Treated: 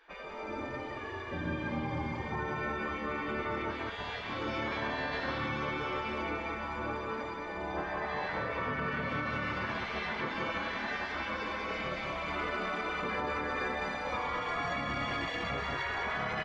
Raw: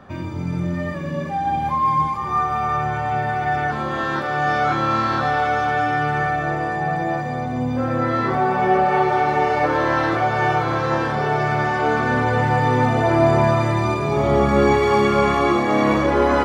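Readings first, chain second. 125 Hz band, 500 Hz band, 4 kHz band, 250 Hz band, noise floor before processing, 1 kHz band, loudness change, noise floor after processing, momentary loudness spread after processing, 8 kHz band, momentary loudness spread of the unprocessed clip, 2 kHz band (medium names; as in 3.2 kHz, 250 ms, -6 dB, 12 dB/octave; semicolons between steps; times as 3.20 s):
-19.0 dB, -17.5 dB, -7.5 dB, -17.0 dB, -26 dBFS, -17.5 dB, -15.5 dB, -41 dBFS, 4 LU, no reading, 7 LU, -10.5 dB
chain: Bessel low-pass 2.8 kHz, order 2; spectral gate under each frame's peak -15 dB weak; delay 185 ms -4.5 dB; peak limiter -23.5 dBFS, peak gain reduction 10.5 dB; trim -2 dB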